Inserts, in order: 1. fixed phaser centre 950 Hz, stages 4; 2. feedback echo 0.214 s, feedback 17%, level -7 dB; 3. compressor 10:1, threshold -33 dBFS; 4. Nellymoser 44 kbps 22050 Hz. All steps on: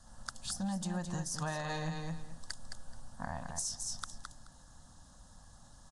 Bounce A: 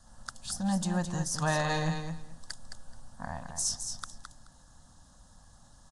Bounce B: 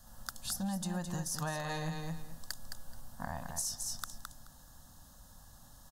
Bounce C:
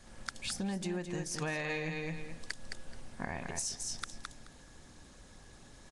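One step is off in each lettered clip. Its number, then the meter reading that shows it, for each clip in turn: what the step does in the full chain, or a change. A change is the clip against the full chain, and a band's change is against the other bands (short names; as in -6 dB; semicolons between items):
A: 3, mean gain reduction 2.0 dB; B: 4, crest factor change +2.0 dB; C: 1, 2 kHz band +5.5 dB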